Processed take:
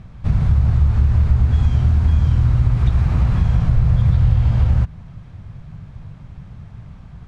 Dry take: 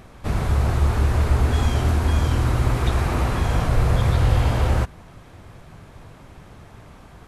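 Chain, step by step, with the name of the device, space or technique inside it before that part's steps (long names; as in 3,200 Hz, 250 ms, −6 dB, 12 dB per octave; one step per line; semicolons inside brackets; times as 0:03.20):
jukebox (low-pass filter 5,800 Hz 12 dB per octave; low shelf with overshoot 230 Hz +12 dB, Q 1.5; downward compressor 3 to 1, threshold −7 dBFS, peak gain reduction 7 dB)
level −4.5 dB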